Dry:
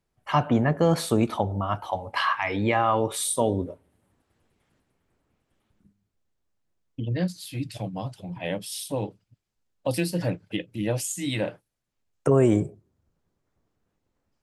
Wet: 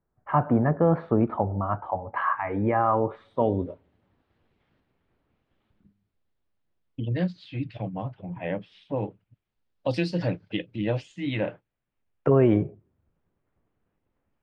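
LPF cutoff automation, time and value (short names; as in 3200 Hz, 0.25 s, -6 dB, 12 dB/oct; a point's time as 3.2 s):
LPF 24 dB/oct
3.27 s 1600 Hz
3.68 s 4100 Hz
7.06 s 4100 Hz
8.13 s 2300 Hz
8.96 s 2300 Hz
9.87 s 5100 Hz
10.41 s 5100 Hz
11.25 s 3000 Hz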